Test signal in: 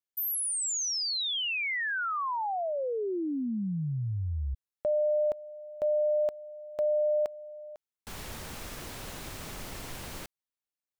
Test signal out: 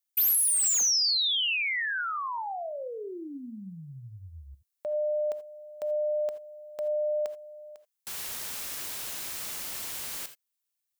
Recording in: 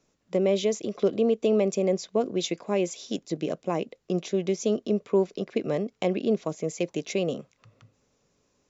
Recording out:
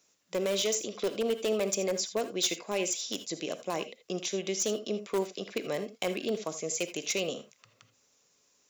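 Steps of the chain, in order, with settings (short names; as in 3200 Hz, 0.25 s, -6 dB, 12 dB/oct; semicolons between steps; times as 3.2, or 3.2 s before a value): tilt +3.5 dB/oct; in parallel at -10 dB: wrapped overs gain 19 dB; on the sum: non-linear reverb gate 0.1 s rising, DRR 11 dB; gain -4.5 dB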